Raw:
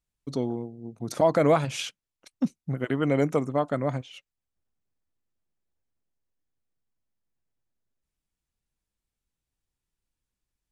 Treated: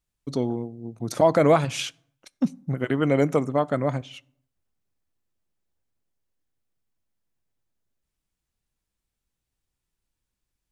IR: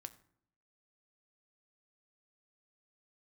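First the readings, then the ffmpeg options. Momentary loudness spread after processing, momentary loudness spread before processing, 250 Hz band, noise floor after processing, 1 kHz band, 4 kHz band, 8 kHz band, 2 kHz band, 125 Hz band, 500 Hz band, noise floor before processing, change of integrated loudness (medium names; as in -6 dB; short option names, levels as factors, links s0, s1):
15 LU, 15 LU, +2.5 dB, -84 dBFS, +3.0 dB, +3.0 dB, +3.0 dB, +3.0 dB, +3.0 dB, +3.0 dB, under -85 dBFS, +3.0 dB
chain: -filter_complex "[0:a]asplit=2[s0][s1];[1:a]atrim=start_sample=2205[s2];[s1][s2]afir=irnorm=-1:irlink=0,volume=0.794[s3];[s0][s3]amix=inputs=2:normalize=0"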